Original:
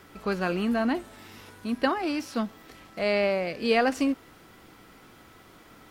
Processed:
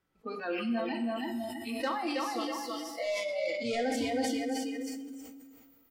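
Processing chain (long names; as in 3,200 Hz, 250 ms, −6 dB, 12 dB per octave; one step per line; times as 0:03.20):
loose part that buzzes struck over −32 dBFS, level −24 dBFS
0:00.84–0:03.05: parametric band 220 Hz −13.5 dB 0.65 octaves
repeating echo 322 ms, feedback 42%, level −3.5 dB
soft clipping −22.5 dBFS, distortion −12 dB
downward compressor 5 to 1, threshold −31 dBFS, peak gain reduction 6.5 dB
low-shelf EQ 150 Hz +5 dB
delay with a high-pass on its return 571 ms, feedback 32%, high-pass 2,300 Hz, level −6 dB
noise reduction from a noise print of the clip's start 29 dB
coupled-rooms reverb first 0.92 s, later 2.9 s, DRR 5 dB
level that may fall only so fast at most 33 dB per second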